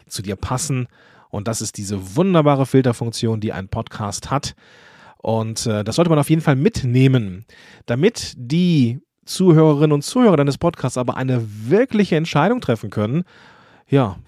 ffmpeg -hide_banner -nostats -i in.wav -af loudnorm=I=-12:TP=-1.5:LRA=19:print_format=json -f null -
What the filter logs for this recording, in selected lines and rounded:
"input_i" : "-18.5",
"input_tp" : "-1.2",
"input_lra" : "3.2",
"input_thresh" : "-29.0",